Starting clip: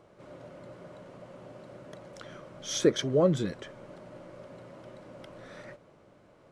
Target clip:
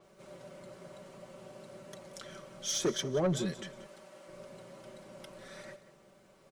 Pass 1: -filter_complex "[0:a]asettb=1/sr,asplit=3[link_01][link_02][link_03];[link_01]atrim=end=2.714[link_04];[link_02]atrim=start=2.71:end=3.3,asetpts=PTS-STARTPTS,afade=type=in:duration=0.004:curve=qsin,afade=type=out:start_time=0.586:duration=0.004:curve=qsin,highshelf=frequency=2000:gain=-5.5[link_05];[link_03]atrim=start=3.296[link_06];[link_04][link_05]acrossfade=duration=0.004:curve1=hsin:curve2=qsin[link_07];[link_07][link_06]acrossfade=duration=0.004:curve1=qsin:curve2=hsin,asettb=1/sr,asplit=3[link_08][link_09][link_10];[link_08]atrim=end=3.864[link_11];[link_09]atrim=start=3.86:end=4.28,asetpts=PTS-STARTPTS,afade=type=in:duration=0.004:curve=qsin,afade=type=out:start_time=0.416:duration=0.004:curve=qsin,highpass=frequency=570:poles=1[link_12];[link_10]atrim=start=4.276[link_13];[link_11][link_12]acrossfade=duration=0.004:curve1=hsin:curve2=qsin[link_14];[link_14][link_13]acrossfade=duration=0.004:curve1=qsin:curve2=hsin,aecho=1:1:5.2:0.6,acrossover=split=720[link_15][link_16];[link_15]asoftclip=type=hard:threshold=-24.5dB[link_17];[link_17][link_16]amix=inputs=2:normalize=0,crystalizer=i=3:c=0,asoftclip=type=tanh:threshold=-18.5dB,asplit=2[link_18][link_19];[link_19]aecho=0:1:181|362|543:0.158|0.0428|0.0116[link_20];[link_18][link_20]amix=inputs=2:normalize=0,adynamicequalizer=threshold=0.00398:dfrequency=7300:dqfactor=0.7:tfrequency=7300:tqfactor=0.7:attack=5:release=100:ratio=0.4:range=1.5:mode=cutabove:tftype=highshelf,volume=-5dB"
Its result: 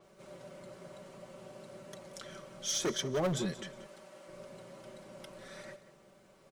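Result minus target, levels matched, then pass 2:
hard clipping: distortion +13 dB
-filter_complex "[0:a]asettb=1/sr,asplit=3[link_01][link_02][link_03];[link_01]atrim=end=2.714[link_04];[link_02]atrim=start=2.71:end=3.3,asetpts=PTS-STARTPTS,afade=type=in:duration=0.004:curve=qsin,afade=type=out:start_time=0.586:duration=0.004:curve=qsin,highshelf=frequency=2000:gain=-5.5[link_05];[link_03]atrim=start=3.296[link_06];[link_04][link_05]acrossfade=duration=0.004:curve1=hsin:curve2=qsin[link_07];[link_07][link_06]acrossfade=duration=0.004:curve1=qsin:curve2=hsin,asettb=1/sr,asplit=3[link_08][link_09][link_10];[link_08]atrim=end=3.864[link_11];[link_09]atrim=start=3.86:end=4.28,asetpts=PTS-STARTPTS,afade=type=in:duration=0.004:curve=qsin,afade=type=out:start_time=0.416:duration=0.004:curve=qsin,highpass=frequency=570:poles=1[link_12];[link_10]atrim=start=4.276[link_13];[link_11][link_12]acrossfade=duration=0.004:curve1=hsin:curve2=qsin[link_14];[link_14][link_13]acrossfade=duration=0.004:curve1=qsin:curve2=hsin,aecho=1:1:5.2:0.6,acrossover=split=720[link_15][link_16];[link_15]asoftclip=type=hard:threshold=-15dB[link_17];[link_17][link_16]amix=inputs=2:normalize=0,crystalizer=i=3:c=0,asoftclip=type=tanh:threshold=-18.5dB,asplit=2[link_18][link_19];[link_19]aecho=0:1:181|362|543:0.158|0.0428|0.0116[link_20];[link_18][link_20]amix=inputs=2:normalize=0,adynamicequalizer=threshold=0.00398:dfrequency=7300:dqfactor=0.7:tfrequency=7300:tqfactor=0.7:attack=5:release=100:ratio=0.4:range=1.5:mode=cutabove:tftype=highshelf,volume=-5dB"

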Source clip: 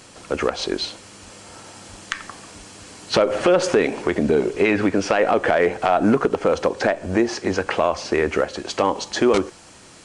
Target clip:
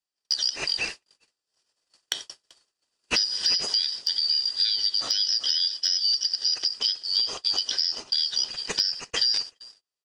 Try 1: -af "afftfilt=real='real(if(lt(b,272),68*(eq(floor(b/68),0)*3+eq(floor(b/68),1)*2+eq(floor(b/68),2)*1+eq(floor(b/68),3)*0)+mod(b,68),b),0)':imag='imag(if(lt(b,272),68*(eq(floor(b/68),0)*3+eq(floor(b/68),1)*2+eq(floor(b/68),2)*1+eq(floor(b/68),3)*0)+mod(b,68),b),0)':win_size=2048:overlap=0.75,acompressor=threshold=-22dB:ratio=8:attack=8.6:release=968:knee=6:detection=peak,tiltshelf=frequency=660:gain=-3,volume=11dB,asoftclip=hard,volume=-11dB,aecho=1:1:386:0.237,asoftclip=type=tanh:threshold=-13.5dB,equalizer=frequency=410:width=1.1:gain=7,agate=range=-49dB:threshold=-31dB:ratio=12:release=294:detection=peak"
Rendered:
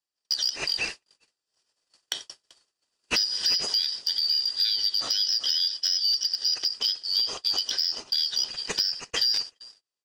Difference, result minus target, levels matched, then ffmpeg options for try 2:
soft clipping: distortion +21 dB
-af "afftfilt=real='real(if(lt(b,272),68*(eq(floor(b/68),0)*3+eq(floor(b/68),1)*2+eq(floor(b/68),2)*1+eq(floor(b/68),3)*0)+mod(b,68),b),0)':imag='imag(if(lt(b,272),68*(eq(floor(b/68),0)*3+eq(floor(b/68),1)*2+eq(floor(b/68),2)*1+eq(floor(b/68),3)*0)+mod(b,68),b),0)':win_size=2048:overlap=0.75,acompressor=threshold=-22dB:ratio=8:attack=8.6:release=968:knee=6:detection=peak,tiltshelf=frequency=660:gain=-3,volume=11dB,asoftclip=hard,volume=-11dB,aecho=1:1:386:0.237,asoftclip=type=tanh:threshold=-2dB,equalizer=frequency=410:width=1.1:gain=7,agate=range=-49dB:threshold=-31dB:ratio=12:release=294:detection=peak"

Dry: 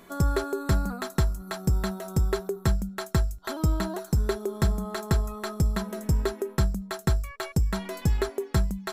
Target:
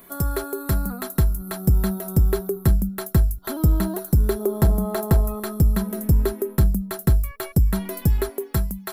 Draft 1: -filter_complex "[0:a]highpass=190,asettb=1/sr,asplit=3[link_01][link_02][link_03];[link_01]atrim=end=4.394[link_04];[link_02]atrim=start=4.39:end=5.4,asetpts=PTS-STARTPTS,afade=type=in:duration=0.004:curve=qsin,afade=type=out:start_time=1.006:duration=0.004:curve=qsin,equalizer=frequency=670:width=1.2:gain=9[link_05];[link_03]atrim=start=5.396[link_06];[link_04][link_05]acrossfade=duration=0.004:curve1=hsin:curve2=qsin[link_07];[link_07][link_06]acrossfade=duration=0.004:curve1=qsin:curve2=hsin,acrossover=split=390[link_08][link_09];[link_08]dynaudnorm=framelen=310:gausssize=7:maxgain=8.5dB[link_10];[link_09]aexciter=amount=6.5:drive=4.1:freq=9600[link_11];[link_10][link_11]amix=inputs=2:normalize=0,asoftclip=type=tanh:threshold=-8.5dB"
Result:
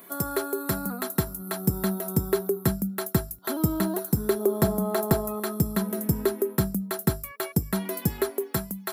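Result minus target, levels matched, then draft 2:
250 Hz band +3.0 dB
-filter_complex "[0:a]asettb=1/sr,asplit=3[link_01][link_02][link_03];[link_01]atrim=end=4.394[link_04];[link_02]atrim=start=4.39:end=5.4,asetpts=PTS-STARTPTS,afade=type=in:duration=0.004:curve=qsin,afade=type=out:start_time=1.006:duration=0.004:curve=qsin,equalizer=frequency=670:width=1.2:gain=9[link_05];[link_03]atrim=start=5.396[link_06];[link_04][link_05]acrossfade=duration=0.004:curve1=hsin:curve2=qsin[link_07];[link_07][link_06]acrossfade=duration=0.004:curve1=qsin:curve2=hsin,acrossover=split=390[link_08][link_09];[link_08]dynaudnorm=framelen=310:gausssize=7:maxgain=8.5dB[link_10];[link_09]aexciter=amount=6.5:drive=4.1:freq=9600[link_11];[link_10][link_11]amix=inputs=2:normalize=0,asoftclip=type=tanh:threshold=-8.5dB"

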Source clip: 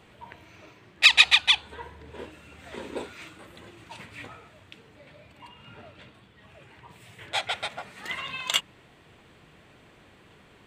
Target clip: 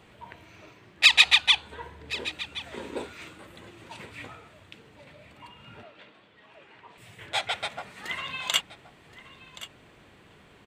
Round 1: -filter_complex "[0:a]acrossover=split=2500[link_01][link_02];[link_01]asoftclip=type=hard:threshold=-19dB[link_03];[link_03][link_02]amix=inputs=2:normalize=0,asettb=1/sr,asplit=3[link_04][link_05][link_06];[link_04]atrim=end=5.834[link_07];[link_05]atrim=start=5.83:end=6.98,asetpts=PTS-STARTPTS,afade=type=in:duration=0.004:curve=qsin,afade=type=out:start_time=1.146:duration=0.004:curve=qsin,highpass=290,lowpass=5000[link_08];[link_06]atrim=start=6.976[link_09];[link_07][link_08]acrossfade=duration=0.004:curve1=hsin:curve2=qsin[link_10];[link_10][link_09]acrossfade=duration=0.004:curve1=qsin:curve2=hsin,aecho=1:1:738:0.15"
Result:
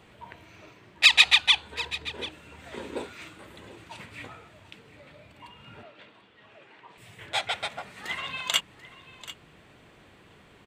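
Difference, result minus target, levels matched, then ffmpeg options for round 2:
echo 336 ms early
-filter_complex "[0:a]acrossover=split=2500[link_01][link_02];[link_01]asoftclip=type=hard:threshold=-19dB[link_03];[link_03][link_02]amix=inputs=2:normalize=0,asettb=1/sr,asplit=3[link_04][link_05][link_06];[link_04]atrim=end=5.834[link_07];[link_05]atrim=start=5.83:end=6.98,asetpts=PTS-STARTPTS,afade=type=in:duration=0.004:curve=qsin,afade=type=out:start_time=1.146:duration=0.004:curve=qsin,highpass=290,lowpass=5000[link_08];[link_06]atrim=start=6.976[link_09];[link_07][link_08]acrossfade=duration=0.004:curve1=hsin:curve2=qsin[link_10];[link_10][link_09]acrossfade=duration=0.004:curve1=qsin:curve2=hsin,aecho=1:1:1074:0.15"

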